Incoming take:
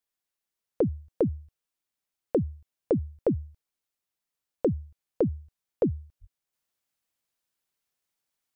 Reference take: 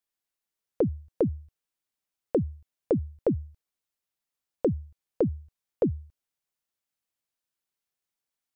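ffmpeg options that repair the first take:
-filter_complex "[0:a]asplit=3[a][b][c];[a]afade=t=out:st=6.2:d=0.02[d];[b]highpass=f=140:w=0.5412,highpass=f=140:w=1.3066,afade=t=in:st=6.2:d=0.02,afade=t=out:st=6.32:d=0.02[e];[c]afade=t=in:st=6.32:d=0.02[f];[d][e][f]amix=inputs=3:normalize=0,asetnsamples=n=441:p=0,asendcmd='6.53 volume volume -4dB',volume=0dB"

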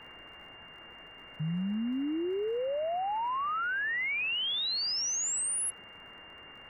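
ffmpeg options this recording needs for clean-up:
-af "adeclick=t=4,bandreject=f=2.8k:w=30,afwtdn=0.0063"

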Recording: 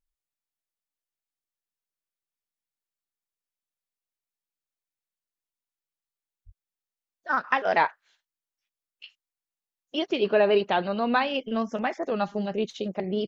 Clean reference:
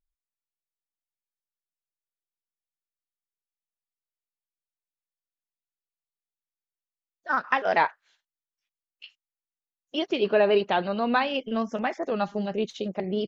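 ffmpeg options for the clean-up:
-filter_complex "[0:a]asplit=3[a][b][c];[a]afade=t=out:st=6.45:d=0.02[d];[b]highpass=f=140:w=0.5412,highpass=f=140:w=1.3066,afade=t=in:st=6.45:d=0.02,afade=t=out:st=6.57:d=0.02[e];[c]afade=t=in:st=6.57:d=0.02[f];[d][e][f]amix=inputs=3:normalize=0"

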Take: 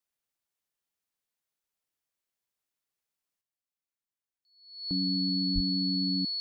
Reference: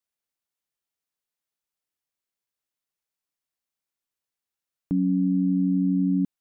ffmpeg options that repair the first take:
-filter_complex "[0:a]bandreject=f=4.4k:w=30,asplit=3[a][b][c];[a]afade=t=out:st=5.54:d=0.02[d];[b]highpass=f=140:w=0.5412,highpass=f=140:w=1.3066,afade=t=in:st=5.54:d=0.02,afade=t=out:st=5.66:d=0.02[e];[c]afade=t=in:st=5.66:d=0.02[f];[d][e][f]amix=inputs=3:normalize=0,asetnsamples=n=441:p=0,asendcmd='3.41 volume volume 8.5dB',volume=0dB"

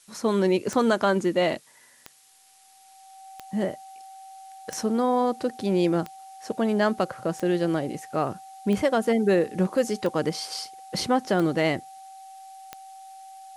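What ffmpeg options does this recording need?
-af "adeclick=t=4,bandreject=f=770:w=30,agate=range=-21dB:threshold=-45dB"

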